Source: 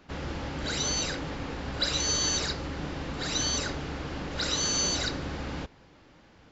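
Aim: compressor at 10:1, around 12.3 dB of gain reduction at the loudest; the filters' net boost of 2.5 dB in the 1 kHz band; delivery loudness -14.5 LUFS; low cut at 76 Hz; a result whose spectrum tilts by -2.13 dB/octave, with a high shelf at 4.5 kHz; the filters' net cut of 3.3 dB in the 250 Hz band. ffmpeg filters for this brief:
-af "highpass=76,equalizer=f=250:t=o:g=-4.5,equalizer=f=1000:t=o:g=3,highshelf=f=4500:g=7,acompressor=threshold=0.0224:ratio=10,volume=11.2"

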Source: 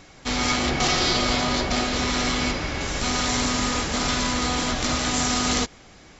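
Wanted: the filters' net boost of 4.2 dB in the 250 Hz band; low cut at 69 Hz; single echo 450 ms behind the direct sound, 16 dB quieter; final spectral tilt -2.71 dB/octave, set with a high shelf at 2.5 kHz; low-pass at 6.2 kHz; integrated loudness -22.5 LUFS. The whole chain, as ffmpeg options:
-af "highpass=69,lowpass=6200,equalizer=f=250:t=o:g=4.5,highshelf=f=2500:g=5,aecho=1:1:450:0.158,volume=0.794"

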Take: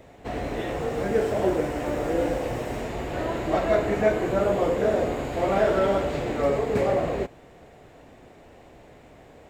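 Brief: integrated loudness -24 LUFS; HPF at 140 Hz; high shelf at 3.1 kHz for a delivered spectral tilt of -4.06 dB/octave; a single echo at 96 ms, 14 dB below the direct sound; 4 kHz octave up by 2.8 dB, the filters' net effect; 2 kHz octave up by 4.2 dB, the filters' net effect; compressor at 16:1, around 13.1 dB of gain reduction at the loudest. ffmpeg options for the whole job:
-af "highpass=140,equalizer=f=2000:t=o:g=5.5,highshelf=f=3100:g=-3.5,equalizer=f=4000:t=o:g=4,acompressor=threshold=0.0355:ratio=16,aecho=1:1:96:0.2,volume=2.99"

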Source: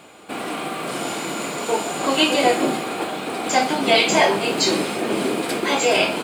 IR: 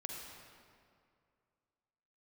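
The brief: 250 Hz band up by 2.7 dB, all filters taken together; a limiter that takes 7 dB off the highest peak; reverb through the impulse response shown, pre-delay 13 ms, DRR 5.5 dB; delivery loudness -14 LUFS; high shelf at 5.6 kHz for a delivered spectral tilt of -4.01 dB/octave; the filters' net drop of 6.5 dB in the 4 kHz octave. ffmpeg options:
-filter_complex "[0:a]equalizer=f=250:t=o:g=3.5,equalizer=f=4000:t=o:g=-8,highshelf=f=5600:g=-3,alimiter=limit=0.299:level=0:latency=1,asplit=2[s0][s1];[1:a]atrim=start_sample=2205,adelay=13[s2];[s1][s2]afir=irnorm=-1:irlink=0,volume=0.596[s3];[s0][s3]amix=inputs=2:normalize=0,volume=2.24"

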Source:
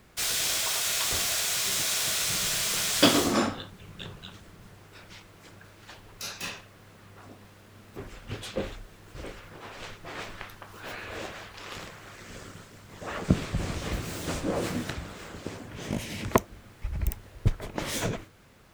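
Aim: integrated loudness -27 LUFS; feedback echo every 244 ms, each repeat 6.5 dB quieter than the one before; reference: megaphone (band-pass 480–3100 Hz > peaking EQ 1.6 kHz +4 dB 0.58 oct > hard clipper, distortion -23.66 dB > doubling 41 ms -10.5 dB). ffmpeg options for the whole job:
-filter_complex "[0:a]highpass=480,lowpass=3100,equalizer=f=1600:t=o:w=0.58:g=4,aecho=1:1:244|488|732|976|1220|1464:0.473|0.222|0.105|0.0491|0.0231|0.0109,asoftclip=type=hard:threshold=0.266,asplit=2[s0][s1];[s1]adelay=41,volume=0.299[s2];[s0][s2]amix=inputs=2:normalize=0,volume=2.11"

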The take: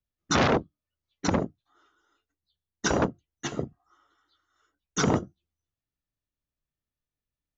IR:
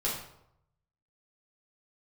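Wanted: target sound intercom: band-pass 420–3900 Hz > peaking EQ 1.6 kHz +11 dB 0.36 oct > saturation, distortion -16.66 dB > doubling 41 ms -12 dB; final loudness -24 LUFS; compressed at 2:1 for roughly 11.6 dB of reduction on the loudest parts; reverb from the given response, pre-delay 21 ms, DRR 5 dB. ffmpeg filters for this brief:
-filter_complex "[0:a]acompressor=threshold=0.00891:ratio=2,asplit=2[s0][s1];[1:a]atrim=start_sample=2205,adelay=21[s2];[s1][s2]afir=irnorm=-1:irlink=0,volume=0.266[s3];[s0][s3]amix=inputs=2:normalize=0,highpass=420,lowpass=3900,equalizer=f=1600:t=o:w=0.36:g=11,asoftclip=threshold=0.0501,asplit=2[s4][s5];[s5]adelay=41,volume=0.251[s6];[s4][s6]amix=inputs=2:normalize=0,volume=5.96"

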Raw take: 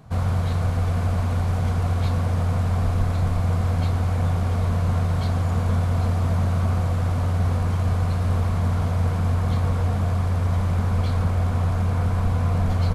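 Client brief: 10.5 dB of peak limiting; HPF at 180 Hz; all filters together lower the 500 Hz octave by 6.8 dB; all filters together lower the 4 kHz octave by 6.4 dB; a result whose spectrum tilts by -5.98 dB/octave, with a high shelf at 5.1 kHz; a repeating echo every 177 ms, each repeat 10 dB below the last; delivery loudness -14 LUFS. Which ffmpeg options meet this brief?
-af "highpass=180,equalizer=f=500:t=o:g=-8.5,equalizer=f=4000:t=o:g=-4.5,highshelf=f=5100:g=-8,alimiter=level_in=1.88:limit=0.0631:level=0:latency=1,volume=0.531,aecho=1:1:177|354|531|708:0.316|0.101|0.0324|0.0104,volume=13.3"

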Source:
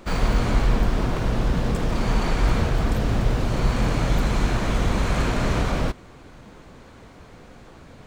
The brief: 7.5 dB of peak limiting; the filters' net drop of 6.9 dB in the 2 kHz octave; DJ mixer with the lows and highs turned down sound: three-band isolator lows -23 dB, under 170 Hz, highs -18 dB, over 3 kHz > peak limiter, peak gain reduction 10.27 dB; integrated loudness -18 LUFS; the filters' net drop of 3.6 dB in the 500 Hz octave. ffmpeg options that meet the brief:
-filter_complex "[0:a]equalizer=f=500:t=o:g=-4,equalizer=f=2000:t=o:g=-7.5,alimiter=limit=0.168:level=0:latency=1,acrossover=split=170 3000:gain=0.0708 1 0.126[s0][s1][s2];[s0][s1][s2]amix=inputs=3:normalize=0,volume=10.6,alimiter=limit=0.335:level=0:latency=1"

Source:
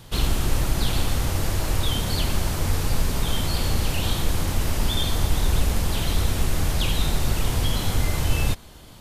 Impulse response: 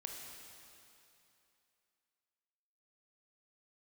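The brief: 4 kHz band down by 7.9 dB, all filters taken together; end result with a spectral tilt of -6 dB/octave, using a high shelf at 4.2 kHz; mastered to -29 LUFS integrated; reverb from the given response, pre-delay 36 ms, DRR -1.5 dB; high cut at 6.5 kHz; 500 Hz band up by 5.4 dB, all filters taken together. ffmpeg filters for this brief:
-filter_complex "[0:a]lowpass=6500,equalizer=f=500:t=o:g=7,equalizer=f=4000:t=o:g=-5,highshelf=f=4200:g=-9,asplit=2[s0][s1];[1:a]atrim=start_sample=2205,adelay=36[s2];[s1][s2]afir=irnorm=-1:irlink=0,volume=1.5[s3];[s0][s3]amix=inputs=2:normalize=0,volume=0.447"

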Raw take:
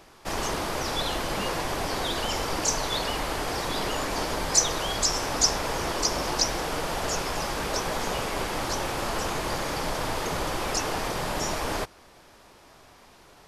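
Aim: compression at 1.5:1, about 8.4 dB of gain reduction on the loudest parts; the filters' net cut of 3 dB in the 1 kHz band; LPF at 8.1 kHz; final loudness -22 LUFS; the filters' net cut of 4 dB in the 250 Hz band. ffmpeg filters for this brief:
-af "lowpass=8100,equalizer=f=250:t=o:g=-5.5,equalizer=f=1000:t=o:g=-3.5,acompressor=threshold=0.00891:ratio=1.5,volume=4.47"

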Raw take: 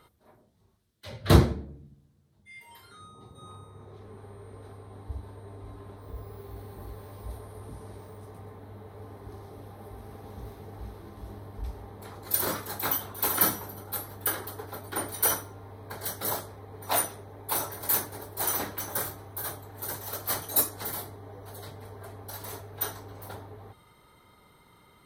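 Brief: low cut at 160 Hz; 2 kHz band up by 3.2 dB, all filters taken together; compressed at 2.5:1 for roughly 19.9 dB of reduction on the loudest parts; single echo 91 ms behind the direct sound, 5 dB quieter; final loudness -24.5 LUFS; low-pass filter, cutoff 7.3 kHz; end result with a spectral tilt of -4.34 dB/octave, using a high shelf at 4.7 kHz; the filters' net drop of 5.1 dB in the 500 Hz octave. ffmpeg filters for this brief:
-af "highpass=160,lowpass=7300,equalizer=f=500:t=o:g=-7,equalizer=f=2000:t=o:g=5.5,highshelf=f=4700:g=-6,acompressor=threshold=0.00355:ratio=2.5,aecho=1:1:91:0.562,volume=15.8"

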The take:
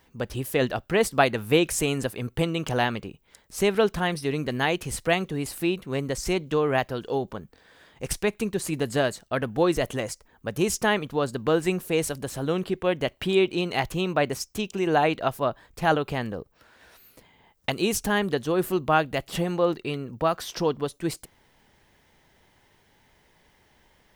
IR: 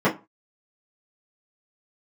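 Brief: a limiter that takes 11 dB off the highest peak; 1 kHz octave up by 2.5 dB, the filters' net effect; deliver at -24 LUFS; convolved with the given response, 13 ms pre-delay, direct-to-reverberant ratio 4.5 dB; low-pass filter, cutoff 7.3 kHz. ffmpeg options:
-filter_complex "[0:a]lowpass=7300,equalizer=f=1000:t=o:g=3.5,alimiter=limit=0.2:level=0:latency=1,asplit=2[s0][s1];[1:a]atrim=start_sample=2205,adelay=13[s2];[s1][s2]afir=irnorm=-1:irlink=0,volume=0.075[s3];[s0][s3]amix=inputs=2:normalize=0,volume=1.06"

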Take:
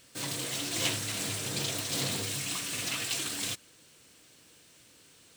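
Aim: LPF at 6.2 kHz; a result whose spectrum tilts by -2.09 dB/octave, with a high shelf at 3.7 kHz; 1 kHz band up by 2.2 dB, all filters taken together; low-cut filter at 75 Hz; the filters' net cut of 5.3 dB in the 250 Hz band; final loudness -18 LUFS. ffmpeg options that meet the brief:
-af "highpass=75,lowpass=6200,equalizer=f=250:t=o:g=-7.5,equalizer=f=1000:t=o:g=3.5,highshelf=f=3700:g=-3,volume=7.08"

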